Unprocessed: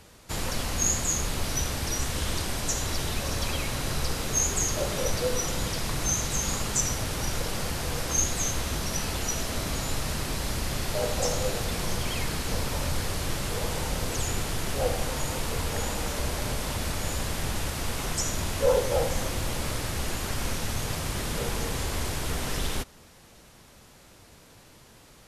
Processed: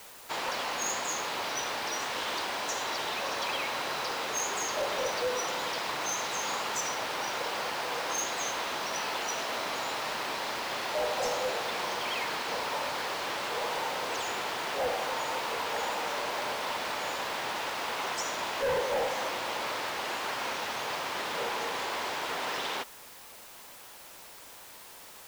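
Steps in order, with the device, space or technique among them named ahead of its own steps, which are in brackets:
drive-through speaker (band-pass filter 520–3,900 Hz; parametric band 930 Hz +4.5 dB 0.49 octaves; hard clipping −28.5 dBFS, distortion −12 dB; white noise bed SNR 17 dB)
level +2.5 dB

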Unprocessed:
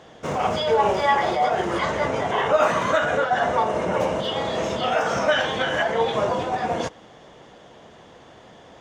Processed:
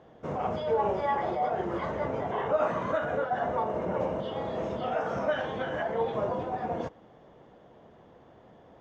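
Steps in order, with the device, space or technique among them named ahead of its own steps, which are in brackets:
through cloth (low-pass filter 7,500 Hz 12 dB per octave; high-shelf EQ 1,900 Hz −17 dB)
level −5.5 dB

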